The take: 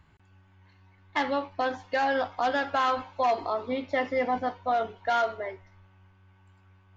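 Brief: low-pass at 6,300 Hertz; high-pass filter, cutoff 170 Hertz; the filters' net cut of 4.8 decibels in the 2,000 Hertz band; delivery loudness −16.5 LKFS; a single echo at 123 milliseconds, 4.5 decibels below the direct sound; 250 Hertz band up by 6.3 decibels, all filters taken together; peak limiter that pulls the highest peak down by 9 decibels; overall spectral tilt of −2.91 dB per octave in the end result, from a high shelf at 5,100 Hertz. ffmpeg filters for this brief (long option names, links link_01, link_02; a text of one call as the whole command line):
ffmpeg -i in.wav -af "highpass=170,lowpass=6300,equalizer=frequency=250:width_type=o:gain=7.5,equalizer=frequency=2000:width_type=o:gain=-6,highshelf=frequency=5100:gain=-3.5,alimiter=limit=-24dB:level=0:latency=1,aecho=1:1:123:0.596,volume=16dB" out.wav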